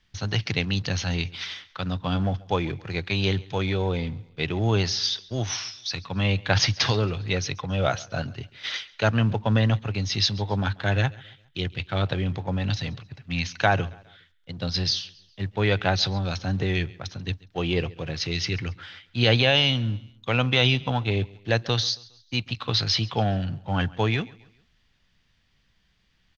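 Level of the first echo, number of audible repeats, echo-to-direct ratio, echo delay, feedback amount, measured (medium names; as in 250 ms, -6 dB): -22.5 dB, 2, -21.5 dB, 137 ms, 41%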